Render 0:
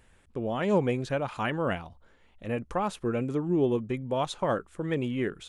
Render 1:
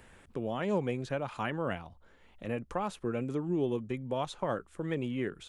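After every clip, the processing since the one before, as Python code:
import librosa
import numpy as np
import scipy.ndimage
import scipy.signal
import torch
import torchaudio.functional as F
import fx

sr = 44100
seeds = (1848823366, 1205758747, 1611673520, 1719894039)

y = fx.band_squash(x, sr, depth_pct=40)
y = y * librosa.db_to_amplitude(-5.0)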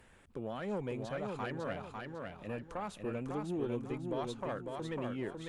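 y = fx.tube_stage(x, sr, drive_db=24.0, bias=0.4)
y = fx.echo_feedback(y, sr, ms=550, feedback_pct=32, wet_db=-4)
y = y * librosa.db_to_amplitude(-3.5)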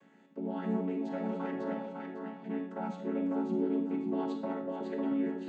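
y = fx.chord_vocoder(x, sr, chord='minor triad', root=54)
y = fx.rev_freeverb(y, sr, rt60_s=0.7, hf_ratio=0.85, predelay_ms=0, drr_db=4.0)
y = y * librosa.db_to_amplitude(4.0)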